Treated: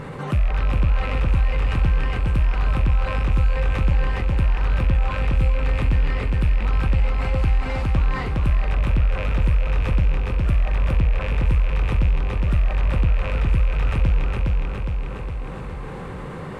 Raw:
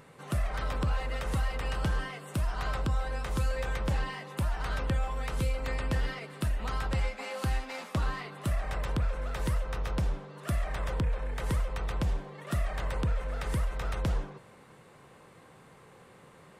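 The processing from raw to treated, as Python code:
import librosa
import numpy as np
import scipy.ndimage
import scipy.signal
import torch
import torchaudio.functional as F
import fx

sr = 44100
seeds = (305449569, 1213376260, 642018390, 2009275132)

y = fx.rattle_buzz(x, sr, strikes_db=-35.0, level_db=-24.0)
y = fx.lowpass(y, sr, hz=1900.0, slope=6)
y = fx.low_shelf(y, sr, hz=120.0, db=10.0)
y = fx.notch(y, sr, hz=670.0, q=12.0)
y = fx.echo_feedback(y, sr, ms=412, feedback_pct=40, wet_db=-4.5)
y = fx.env_flatten(y, sr, amount_pct=50)
y = F.gain(torch.from_numpy(y), 1.0).numpy()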